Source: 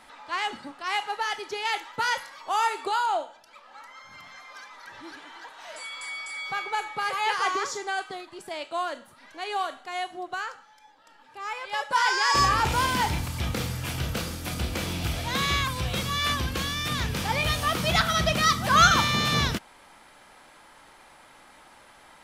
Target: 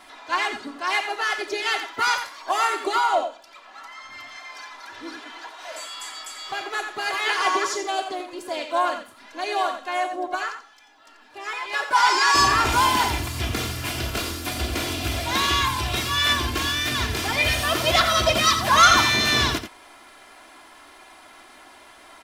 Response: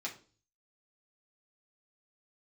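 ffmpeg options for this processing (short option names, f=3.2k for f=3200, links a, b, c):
-filter_complex "[0:a]lowshelf=f=79:g=-9,aecho=1:1:2.9:0.98,asplit=2[a][b];[b]adelay=87.46,volume=-9dB,highshelf=f=4k:g=-1.97[c];[a][c]amix=inputs=2:normalize=0,acrossover=split=3100[d][e];[d]asoftclip=type=tanh:threshold=-11dB[f];[f][e]amix=inputs=2:normalize=0,asplit=3[g][h][i];[h]asetrate=37084,aresample=44100,atempo=1.18921,volume=-10dB[j];[i]asetrate=66075,aresample=44100,atempo=0.66742,volume=-15dB[k];[g][j][k]amix=inputs=3:normalize=0,volume=1.5dB"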